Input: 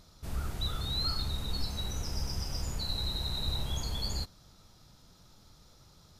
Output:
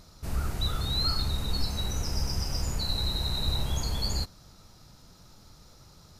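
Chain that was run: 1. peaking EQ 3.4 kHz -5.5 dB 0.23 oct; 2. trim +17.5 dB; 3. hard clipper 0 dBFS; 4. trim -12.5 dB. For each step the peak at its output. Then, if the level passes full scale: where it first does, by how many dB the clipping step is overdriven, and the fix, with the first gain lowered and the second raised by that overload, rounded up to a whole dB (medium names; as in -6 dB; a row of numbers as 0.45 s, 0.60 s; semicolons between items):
-20.0 dBFS, -2.5 dBFS, -2.5 dBFS, -15.0 dBFS; nothing clips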